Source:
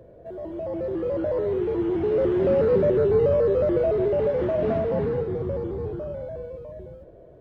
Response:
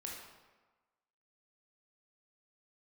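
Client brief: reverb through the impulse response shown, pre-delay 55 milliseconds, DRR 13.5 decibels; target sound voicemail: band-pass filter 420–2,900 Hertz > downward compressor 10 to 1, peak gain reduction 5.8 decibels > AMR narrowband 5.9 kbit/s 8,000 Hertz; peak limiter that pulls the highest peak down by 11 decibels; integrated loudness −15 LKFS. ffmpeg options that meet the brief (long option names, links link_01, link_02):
-filter_complex "[0:a]alimiter=limit=-22dB:level=0:latency=1,asplit=2[link_01][link_02];[1:a]atrim=start_sample=2205,adelay=55[link_03];[link_02][link_03]afir=irnorm=-1:irlink=0,volume=-12dB[link_04];[link_01][link_04]amix=inputs=2:normalize=0,highpass=420,lowpass=2900,acompressor=threshold=-31dB:ratio=10,volume=21.5dB" -ar 8000 -c:a libopencore_amrnb -b:a 5900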